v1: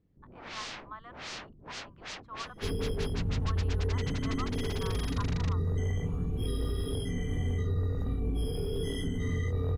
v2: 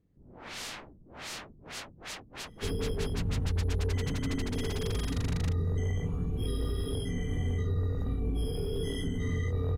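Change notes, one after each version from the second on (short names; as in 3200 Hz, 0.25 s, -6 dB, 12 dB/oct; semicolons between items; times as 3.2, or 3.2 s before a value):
speech: muted; first sound: remove LPF 6400 Hz 24 dB/oct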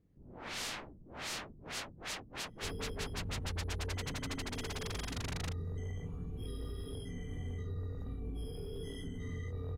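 second sound -10.0 dB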